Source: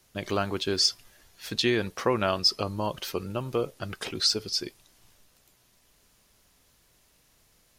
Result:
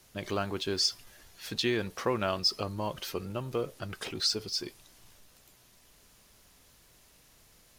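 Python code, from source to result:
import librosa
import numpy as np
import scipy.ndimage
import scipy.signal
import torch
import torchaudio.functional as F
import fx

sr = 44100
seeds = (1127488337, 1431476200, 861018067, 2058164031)

y = fx.law_mismatch(x, sr, coded='mu')
y = F.gain(torch.from_numpy(y), -5.0).numpy()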